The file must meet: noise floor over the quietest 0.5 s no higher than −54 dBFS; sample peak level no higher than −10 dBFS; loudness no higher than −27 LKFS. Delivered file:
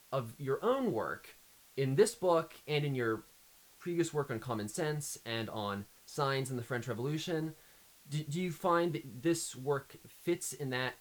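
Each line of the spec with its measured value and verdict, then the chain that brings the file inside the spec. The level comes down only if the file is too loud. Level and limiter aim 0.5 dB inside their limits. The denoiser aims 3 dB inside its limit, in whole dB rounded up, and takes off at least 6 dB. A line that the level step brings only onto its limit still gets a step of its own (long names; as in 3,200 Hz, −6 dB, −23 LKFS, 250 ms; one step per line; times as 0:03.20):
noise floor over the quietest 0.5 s −62 dBFS: in spec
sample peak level −15.0 dBFS: in spec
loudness −35.5 LKFS: in spec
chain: no processing needed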